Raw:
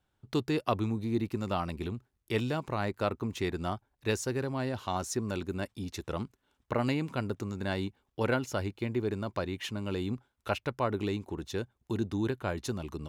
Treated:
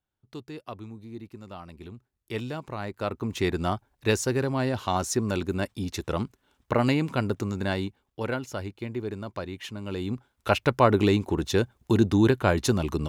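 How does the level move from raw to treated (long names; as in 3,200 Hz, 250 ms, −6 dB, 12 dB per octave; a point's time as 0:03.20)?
0:01.60 −10 dB
0:02.32 −2 dB
0:02.90 −2 dB
0:03.45 +6.5 dB
0:07.57 +6.5 dB
0:08.20 −1 dB
0:09.78 −1 dB
0:10.71 +11 dB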